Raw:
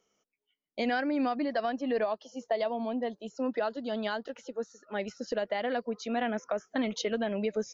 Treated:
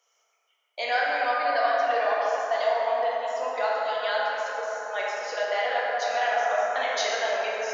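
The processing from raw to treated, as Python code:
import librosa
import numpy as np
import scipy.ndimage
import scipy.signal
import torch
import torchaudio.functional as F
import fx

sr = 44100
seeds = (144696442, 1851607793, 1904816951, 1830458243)

p1 = scipy.signal.sosfilt(scipy.signal.butter(4, 660.0, 'highpass', fs=sr, output='sos'), x)
p2 = fx.level_steps(p1, sr, step_db=21)
p3 = p1 + F.gain(torch.from_numpy(p2), -3.0).numpy()
p4 = fx.rev_plate(p3, sr, seeds[0], rt60_s=4.4, hf_ratio=0.35, predelay_ms=0, drr_db=-6.0)
y = F.gain(torch.from_numpy(p4), 2.0).numpy()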